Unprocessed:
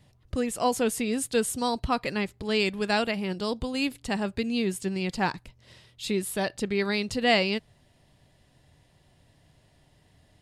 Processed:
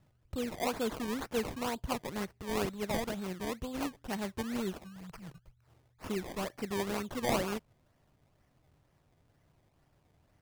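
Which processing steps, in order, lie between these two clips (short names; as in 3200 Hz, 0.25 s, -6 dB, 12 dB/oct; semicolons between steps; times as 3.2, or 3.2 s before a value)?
4.73–6.04 elliptic band-stop 150–4700 Hz; decimation with a swept rate 22×, swing 100% 2.1 Hz; gain -8 dB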